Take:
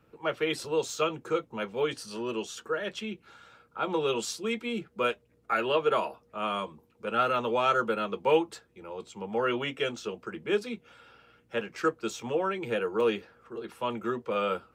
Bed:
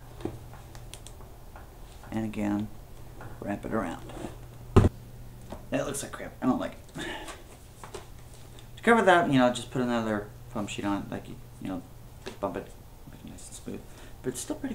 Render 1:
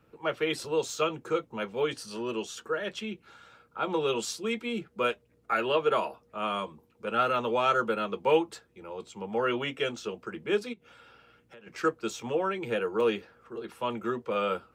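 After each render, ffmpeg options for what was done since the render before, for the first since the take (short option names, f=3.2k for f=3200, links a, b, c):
-filter_complex "[0:a]asplit=3[a][b][c];[a]afade=t=out:st=10.72:d=0.02[d];[b]acompressor=threshold=-47dB:ratio=16:attack=3.2:release=140:knee=1:detection=peak,afade=t=in:st=10.72:d=0.02,afade=t=out:st=11.66:d=0.02[e];[c]afade=t=in:st=11.66:d=0.02[f];[d][e][f]amix=inputs=3:normalize=0"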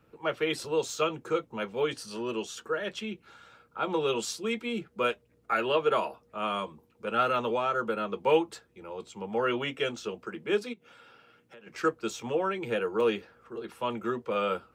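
-filter_complex "[0:a]asettb=1/sr,asplit=3[a][b][c];[a]atrim=end=7.504[d];[b]atrim=start=7.5:end=8.23,asetpts=PTS-STARTPTS,afade=t=in:d=0.004:c=qsin,afade=t=out:st=0.726:d=0.004:c=qsin,acrossover=split=2100|4200[e][f][g];[e]acompressor=threshold=-25dB:ratio=4[h];[f]acompressor=threshold=-48dB:ratio=4[i];[g]acompressor=threshold=-58dB:ratio=4[j];[h][i][j]amix=inputs=3:normalize=0[k];[c]atrim=start=8.226[l];[d][k]acrossfade=d=0.004:c1=hsin:c2=qsin[m];[m][l]acrossfade=d=0.004:c1=qsin:c2=hsin,asettb=1/sr,asplit=3[n][o][p];[n]atrim=end=10.264[q];[o]atrim=start=10.26:end=11.72,asetpts=PTS-STARTPTS,afade=t=in:d=0.004:c=qsin,afade=t=out:st=1.456:d=0.004:c=qsin,highpass=130[r];[p]atrim=start=11.716[s];[q][r]acrossfade=d=0.004:c1=hsin:c2=qsin[t];[t][s]acrossfade=d=0.004:c1=qsin:c2=hsin"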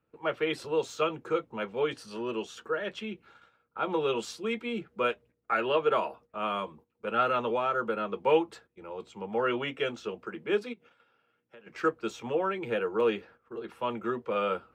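-af "agate=range=-13dB:threshold=-52dB:ratio=16:detection=peak,bass=f=250:g=-2,treble=f=4k:g=-9"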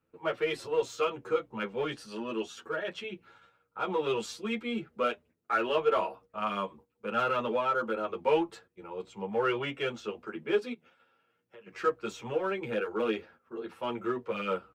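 -filter_complex "[0:a]asplit=2[a][b];[b]asoftclip=type=hard:threshold=-28dB,volume=-9dB[c];[a][c]amix=inputs=2:normalize=0,asplit=2[d][e];[e]adelay=9.2,afreqshift=0.37[f];[d][f]amix=inputs=2:normalize=1"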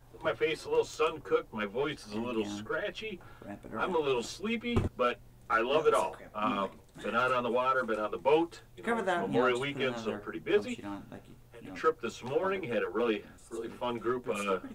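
-filter_complex "[1:a]volume=-11dB[a];[0:a][a]amix=inputs=2:normalize=0"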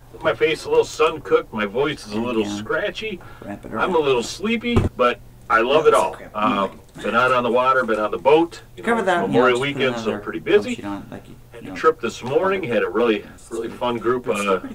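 -af "volume=12dB,alimiter=limit=-3dB:level=0:latency=1"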